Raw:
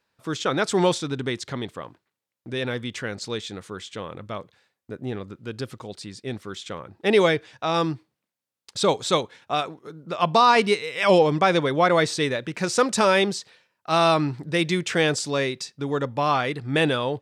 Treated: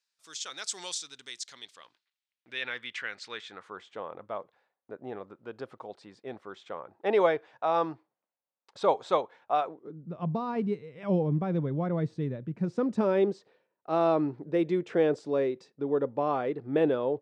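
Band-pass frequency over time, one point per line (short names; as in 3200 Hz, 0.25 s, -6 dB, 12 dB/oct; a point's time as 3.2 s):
band-pass, Q 1.4
1.48 s 6500 Hz
2.68 s 2100 Hz
3.22 s 2100 Hz
3.87 s 760 Hz
9.63 s 760 Hz
10.05 s 150 Hz
12.54 s 150 Hz
13.37 s 420 Hz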